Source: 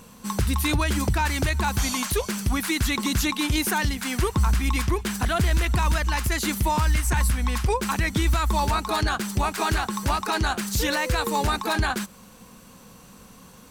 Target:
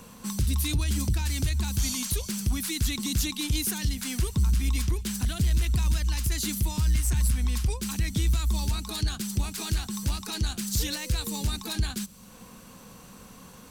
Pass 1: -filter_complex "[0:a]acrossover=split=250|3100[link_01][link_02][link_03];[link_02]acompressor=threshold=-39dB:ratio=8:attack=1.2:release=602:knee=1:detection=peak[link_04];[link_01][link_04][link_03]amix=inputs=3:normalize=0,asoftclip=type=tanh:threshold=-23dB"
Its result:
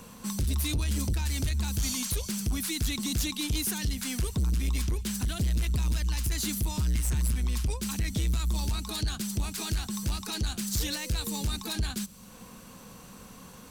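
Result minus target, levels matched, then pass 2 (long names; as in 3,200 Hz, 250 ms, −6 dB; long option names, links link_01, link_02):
soft clipping: distortion +9 dB
-filter_complex "[0:a]acrossover=split=250|3100[link_01][link_02][link_03];[link_02]acompressor=threshold=-39dB:ratio=8:attack=1.2:release=602:knee=1:detection=peak[link_04];[link_01][link_04][link_03]amix=inputs=3:normalize=0,asoftclip=type=tanh:threshold=-16dB"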